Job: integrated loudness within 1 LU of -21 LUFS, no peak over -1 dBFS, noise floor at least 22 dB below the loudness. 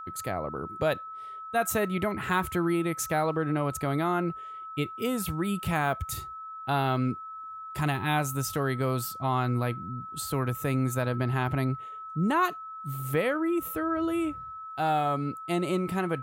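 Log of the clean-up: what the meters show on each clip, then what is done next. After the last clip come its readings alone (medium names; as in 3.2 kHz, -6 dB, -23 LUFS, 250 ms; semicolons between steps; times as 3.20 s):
steady tone 1.3 kHz; tone level -38 dBFS; loudness -29.5 LUFS; peak level -14.0 dBFS; loudness target -21.0 LUFS
-> band-stop 1.3 kHz, Q 30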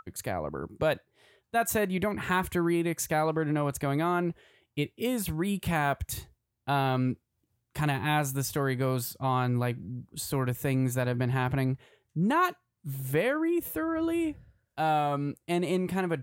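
steady tone not found; loudness -29.5 LUFS; peak level -14.0 dBFS; loudness target -21.0 LUFS
-> trim +8.5 dB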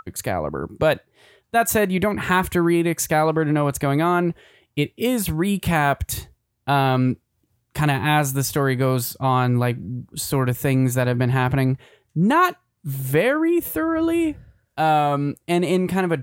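loudness -21.0 LUFS; peak level -5.5 dBFS; noise floor -72 dBFS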